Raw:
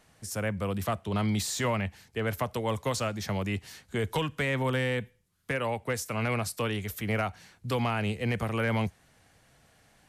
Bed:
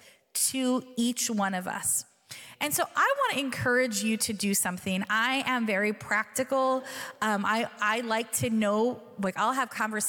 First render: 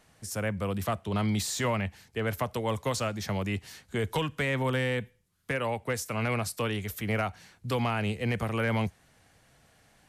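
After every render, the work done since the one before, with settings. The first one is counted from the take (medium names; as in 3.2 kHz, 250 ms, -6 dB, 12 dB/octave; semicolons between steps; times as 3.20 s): no audible change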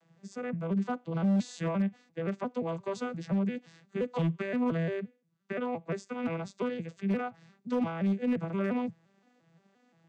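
vocoder on a broken chord minor triad, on E3, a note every 174 ms; overload inside the chain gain 23 dB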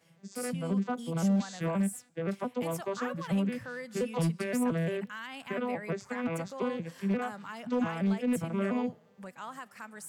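add bed -16 dB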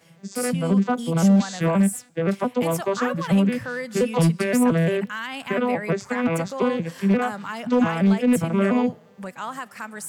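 trim +10.5 dB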